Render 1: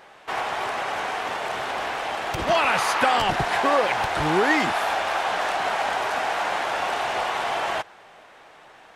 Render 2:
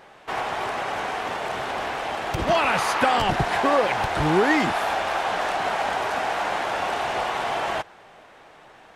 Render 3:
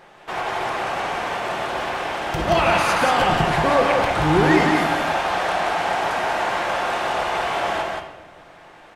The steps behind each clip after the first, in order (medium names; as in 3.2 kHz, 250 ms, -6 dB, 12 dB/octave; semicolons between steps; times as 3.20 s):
bass shelf 420 Hz +6.5 dB; trim -1.5 dB
delay 179 ms -3.5 dB; simulated room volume 570 m³, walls mixed, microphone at 0.87 m